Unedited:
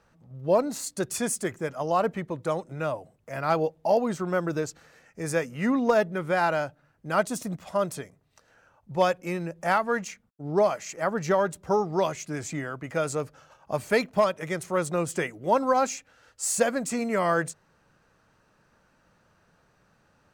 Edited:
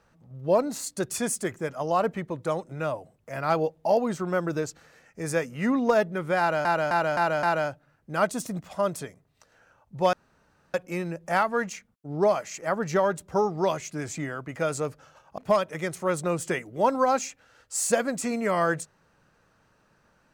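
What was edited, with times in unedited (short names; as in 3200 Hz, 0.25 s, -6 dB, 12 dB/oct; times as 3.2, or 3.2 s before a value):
6.39–6.65 loop, 5 plays
9.09 insert room tone 0.61 s
13.73–14.06 cut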